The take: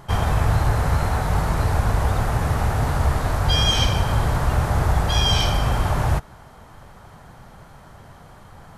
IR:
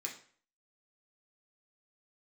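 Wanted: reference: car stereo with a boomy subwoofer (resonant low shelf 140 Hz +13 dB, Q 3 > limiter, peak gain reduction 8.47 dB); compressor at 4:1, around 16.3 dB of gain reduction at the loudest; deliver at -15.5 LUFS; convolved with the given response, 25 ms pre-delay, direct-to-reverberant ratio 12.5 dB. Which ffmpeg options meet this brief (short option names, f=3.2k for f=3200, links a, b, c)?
-filter_complex "[0:a]acompressor=threshold=-35dB:ratio=4,asplit=2[a][b];[1:a]atrim=start_sample=2205,adelay=25[c];[b][c]afir=irnorm=-1:irlink=0,volume=-12dB[d];[a][d]amix=inputs=2:normalize=0,lowshelf=f=140:t=q:w=3:g=13,volume=11dB,alimiter=limit=-6dB:level=0:latency=1"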